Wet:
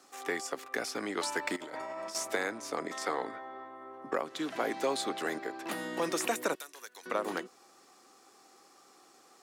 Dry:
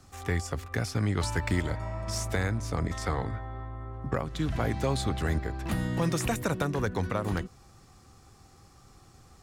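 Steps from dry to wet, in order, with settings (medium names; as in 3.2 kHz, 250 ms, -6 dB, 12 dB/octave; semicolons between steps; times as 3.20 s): high-pass 300 Hz 24 dB/octave; 1.56–2.15 s: compressor with a negative ratio -42 dBFS, ratio -1; 6.55–7.06 s: differentiator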